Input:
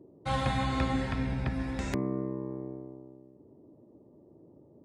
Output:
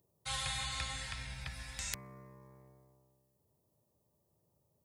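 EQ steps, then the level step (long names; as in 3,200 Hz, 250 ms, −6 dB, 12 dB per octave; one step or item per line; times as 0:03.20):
first-order pre-emphasis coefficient 0.8
guitar amp tone stack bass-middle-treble 10-0-10
parametric band 180 Hz +3 dB 1.2 octaves
+10.5 dB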